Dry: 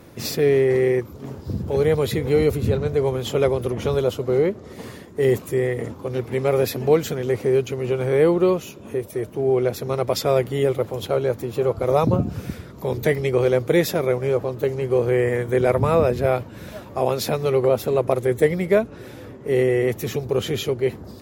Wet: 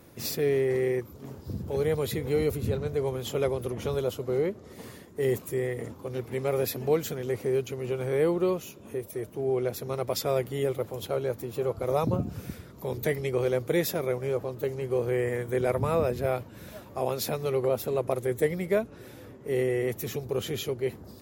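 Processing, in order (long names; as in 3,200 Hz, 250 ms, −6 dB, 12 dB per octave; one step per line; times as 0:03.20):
high-shelf EQ 8,600 Hz +9 dB
level −8 dB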